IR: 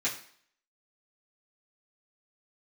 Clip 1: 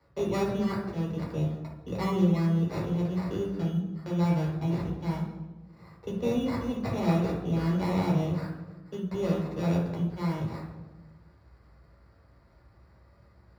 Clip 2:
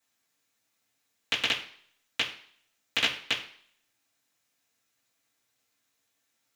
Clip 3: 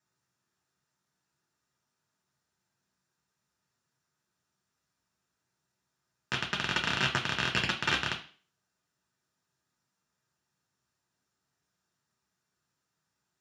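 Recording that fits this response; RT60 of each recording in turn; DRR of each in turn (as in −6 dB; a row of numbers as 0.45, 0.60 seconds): 2; 1.2, 0.55, 0.40 seconds; −4.5, −10.0, 0.0 decibels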